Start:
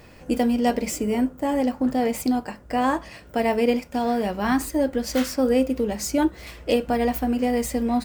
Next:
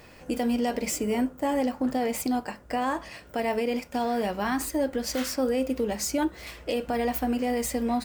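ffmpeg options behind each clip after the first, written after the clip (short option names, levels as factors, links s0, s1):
-af "lowshelf=f=350:g=-5.5,alimiter=limit=0.126:level=0:latency=1:release=64"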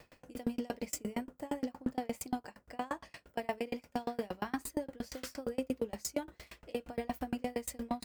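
-af "aeval=exprs='val(0)*pow(10,-33*if(lt(mod(8.6*n/s,1),2*abs(8.6)/1000),1-mod(8.6*n/s,1)/(2*abs(8.6)/1000),(mod(8.6*n/s,1)-2*abs(8.6)/1000)/(1-2*abs(8.6)/1000))/20)':c=same,volume=0.75"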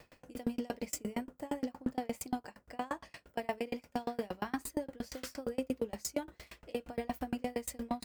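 -af anull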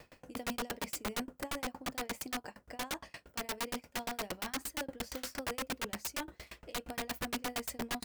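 -af "aeval=exprs='(mod(42.2*val(0)+1,2)-1)/42.2':c=same,volume=1.33"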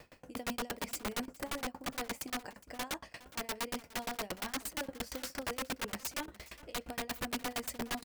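-af "aecho=1:1:413:0.112"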